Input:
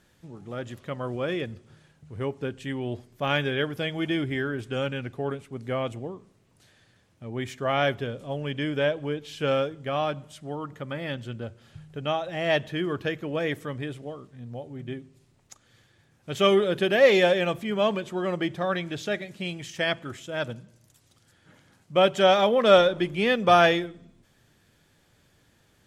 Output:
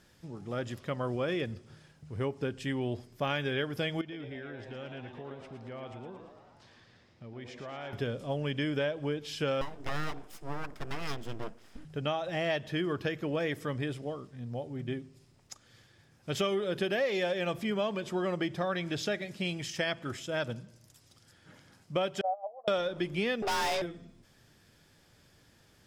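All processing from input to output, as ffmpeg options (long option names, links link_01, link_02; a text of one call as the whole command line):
ffmpeg -i in.wav -filter_complex "[0:a]asettb=1/sr,asplit=3[link_01][link_02][link_03];[link_01]atrim=end=4.014[link_04];[link_02]atrim=start=4.01:end=7.93,asetpts=PTS-STARTPTS,afade=type=in:duration=0.004:curve=qsin,afade=type=out:start_time=3.916:duration=0.004:curve=qsin,acompressor=threshold=-45dB:ratio=3:attack=3.2:release=140:knee=1:detection=peak,lowpass=4800,asplit=9[link_05][link_06][link_07][link_08][link_09][link_10][link_11][link_12][link_13];[link_06]adelay=113,afreqshift=120,volume=-8dB[link_14];[link_07]adelay=226,afreqshift=240,volume=-12.3dB[link_15];[link_08]adelay=339,afreqshift=360,volume=-16.6dB[link_16];[link_09]adelay=452,afreqshift=480,volume=-20.9dB[link_17];[link_10]adelay=565,afreqshift=600,volume=-25.2dB[link_18];[link_11]adelay=678,afreqshift=720,volume=-29.5dB[link_19];[link_12]adelay=791,afreqshift=840,volume=-33.8dB[link_20];[link_13]adelay=904,afreqshift=960,volume=-38.1dB[link_21];[link_05][link_14][link_15][link_16][link_17][link_18][link_19][link_20][link_21]amix=inputs=9:normalize=0,atrim=end_sample=172872[link_22];[link_03]atrim=start=7.926[link_23];[link_04][link_22]acrossfade=duration=0.004:curve1=hsin:curve2=qsin[link_24];[link_24][link_23]acrossfade=duration=0.004:curve1=qsin:curve2=hsin,asettb=1/sr,asplit=3[link_25][link_26][link_27];[link_25]atrim=end=9.614[link_28];[link_26]atrim=start=9.61:end=11.85,asetpts=PTS-STARTPTS,afade=type=in:duration=0.004:curve=qsin,afade=type=out:start_time=2.236:duration=0.004:curve=qsin,aeval=exprs='abs(val(0))':channel_layout=same,equalizer=frequency=4200:width_type=o:width=1.1:gain=-4.5[link_29];[link_27]atrim=start=11.846[link_30];[link_28][link_29]acrossfade=duration=0.004:curve1=hsin:curve2=qsin[link_31];[link_31][link_30]acrossfade=duration=0.004:curve1=qsin:curve2=hsin,asettb=1/sr,asplit=3[link_32][link_33][link_34];[link_32]atrim=end=22.214[link_35];[link_33]atrim=start=22.21:end=22.68,asetpts=PTS-STARTPTS,afade=type=in:duration=0.004:curve=qsin,afade=type=out:start_time=0.466:duration=0.004:curve=qsin,agate=range=-15dB:threshold=-19dB:ratio=16:release=100:detection=peak,asuperpass=centerf=700:order=4:qfactor=4.2[link_36];[link_34]atrim=start=22.676[link_37];[link_35][link_36]acrossfade=duration=0.004:curve1=hsin:curve2=qsin[link_38];[link_38][link_37]acrossfade=duration=0.004:curve1=qsin:curve2=hsin,asettb=1/sr,asplit=3[link_39][link_40][link_41];[link_39]atrim=end=23.424[link_42];[link_40]atrim=start=23.42:end=23.82,asetpts=PTS-STARTPTS,afade=type=in:duration=0.004:curve=qsin,afade=type=out:start_time=0.396:duration=0.004:curve=qsin,afreqshift=220,acontrast=21,aeval=exprs='(tanh(17.8*val(0)+0.3)-tanh(0.3))/17.8':channel_layout=same[link_43];[link_41]atrim=start=23.816[link_44];[link_42][link_43]acrossfade=duration=0.004:curve1=hsin:curve2=qsin[link_45];[link_45][link_44]acrossfade=duration=0.004:curve1=qsin:curve2=hsin,equalizer=frequency=5100:width=6.5:gain=8,acompressor=threshold=-28dB:ratio=6" out.wav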